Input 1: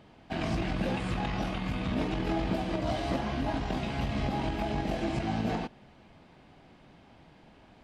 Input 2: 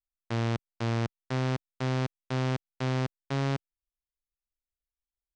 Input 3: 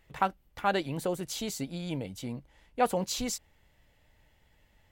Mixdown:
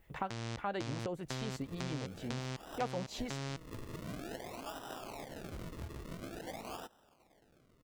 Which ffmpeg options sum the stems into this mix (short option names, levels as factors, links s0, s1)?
-filter_complex "[0:a]highpass=500,acrusher=samples=39:mix=1:aa=0.000001:lfo=1:lforange=39:lforate=0.48,adelay=1200,volume=0.447[s0];[1:a]crystalizer=i=3.5:c=0,volume=1.33[s1];[2:a]lowpass=f=2200:p=1,acrossover=split=700[s2][s3];[s2]aeval=exprs='val(0)*(1-0.5/2+0.5/2*cos(2*PI*8.7*n/s))':c=same[s4];[s3]aeval=exprs='val(0)*(1-0.5/2-0.5/2*cos(2*PI*8.7*n/s))':c=same[s5];[s4][s5]amix=inputs=2:normalize=0,volume=1.33[s6];[s0][s1]amix=inputs=2:normalize=0,acompressor=threshold=0.02:ratio=4,volume=1[s7];[s6][s7]amix=inputs=2:normalize=0,acompressor=threshold=0.00891:ratio=2"